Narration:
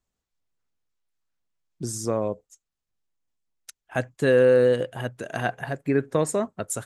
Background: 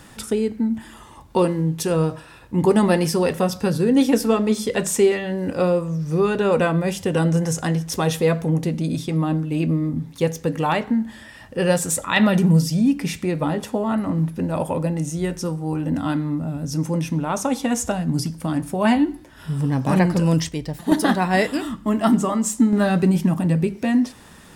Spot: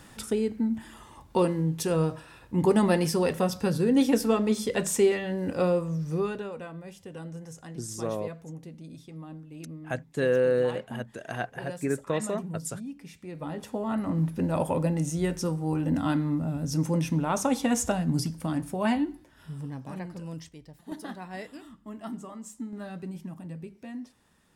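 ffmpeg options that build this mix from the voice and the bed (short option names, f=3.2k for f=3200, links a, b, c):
-filter_complex "[0:a]adelay=5950,volume=-6dB[a];[1:a]volume=12dB,afade=t=out:st=5.99:d=0.53:silence=0.16788,afade=t=in:st=13.2:d=1.24:silence=0.133352,afade=t=out:st=17.89:d=2.04:silence=0.141254[b];[a][b]amix=inputs=2:normalize=0"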